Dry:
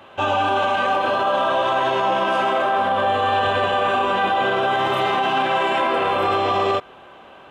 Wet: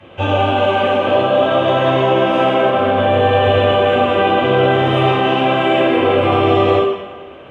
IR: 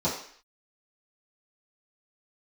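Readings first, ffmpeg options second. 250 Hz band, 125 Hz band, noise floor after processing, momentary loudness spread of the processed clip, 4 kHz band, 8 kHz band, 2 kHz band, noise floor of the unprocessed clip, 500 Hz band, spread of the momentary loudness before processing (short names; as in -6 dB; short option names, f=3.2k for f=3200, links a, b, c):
+11.5 dB, +15.0 dB, -35 dBFS, 2 LU, +4.5 dB, n/a, +2.0 dB, -45 dBFS, +9.0 dB, 1 LU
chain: -filter_complex "[1:a]atrim=start_sample=2205,asetrate=22491,aresample=44100[a];[0:a][a]afir=irnorm=-1:irlink=0,volume=-10dB"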